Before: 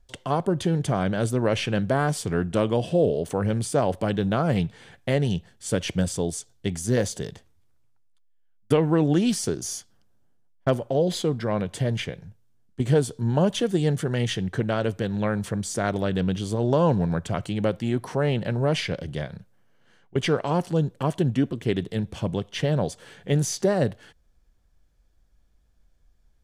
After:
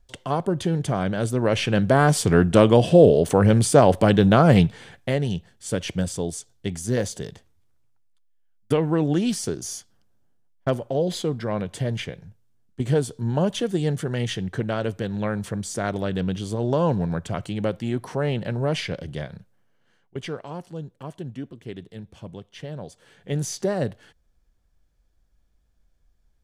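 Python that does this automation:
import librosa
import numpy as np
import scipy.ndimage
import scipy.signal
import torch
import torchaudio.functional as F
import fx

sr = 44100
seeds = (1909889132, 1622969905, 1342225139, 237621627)

y = fx.gain(x, sr, db=fx.line((1.27, 0.0), (2.27, 8.0), (4.61, 8.0), (5.18, -1.0), (19.36, -1.0), (20.59, -11.5), (22.84, -11.5), (23.45, -2.5)))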